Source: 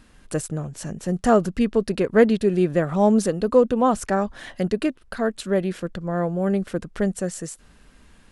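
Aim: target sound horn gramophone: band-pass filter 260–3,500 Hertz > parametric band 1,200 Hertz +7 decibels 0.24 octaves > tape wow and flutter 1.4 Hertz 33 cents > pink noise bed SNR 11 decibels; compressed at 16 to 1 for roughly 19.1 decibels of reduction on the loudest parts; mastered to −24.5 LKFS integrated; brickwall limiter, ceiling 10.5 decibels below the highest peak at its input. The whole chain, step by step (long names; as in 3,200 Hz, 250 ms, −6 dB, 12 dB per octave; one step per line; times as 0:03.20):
downward compressor 16 to 1, threshold −29 dBFS
brickwall limiter −27.5 dBFS
band-pass filter 260–3,500 Hz
parametric band 1,200 Hz +7 dB 0.24 octaves
tape wow and flutter 1.4 Hz 33 cents
pink noise bed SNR 11 dB
level +15.5 dB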